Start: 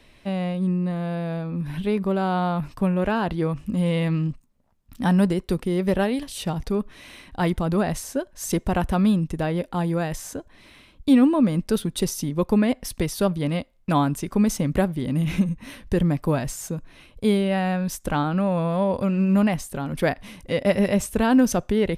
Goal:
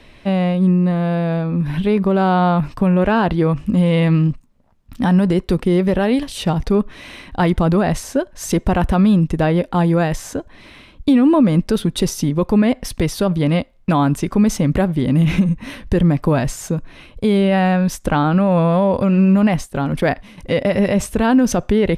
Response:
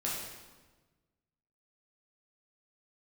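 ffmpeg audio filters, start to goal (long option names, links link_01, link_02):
-filter_complex "[0:a]asettb=1/sr,asplit=3[link_01][link_02][link_03];[link_01]atrim=end=18.104[link_04];[link_02]atrim=start=18.1:end=20.38,asetpts=PTS-STARTPTS,afade=type=in:duration=0.004:curve=qsin,afade=type=out:start_time=2.276:duration=0.004:curve=qsin,agate=range=-9dB:threshold=-31dB:ratio=16:detection=peak[link_05];[link_03]atrim=start=20.376[link_06];[link_04][link_05]acrossfade=duration=0.004:curve1=hsin:curve2=qsin[link_07];[link_07][link_06]acrossfade=duration=0.004:curve1=qsin:curve2=hsin,highshelf=frequency=6800:gain=-10.5,alimiter=level_in=14.5dB:limit=-1dB:release=50:level=0:latency=1,volume=-5.5dB"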